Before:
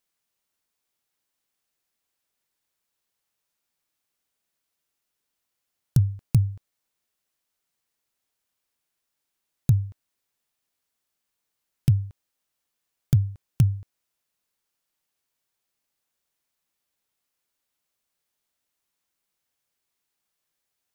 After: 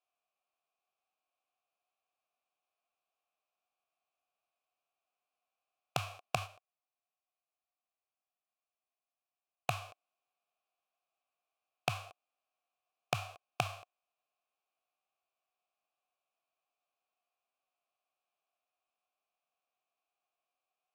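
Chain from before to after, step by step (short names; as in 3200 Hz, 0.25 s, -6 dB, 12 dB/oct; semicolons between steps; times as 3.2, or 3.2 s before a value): spectral whitening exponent 0.3; vowel filter a; 6.36–9.82 gate -50 dBFS, range -7 dB; gain +8.5 dB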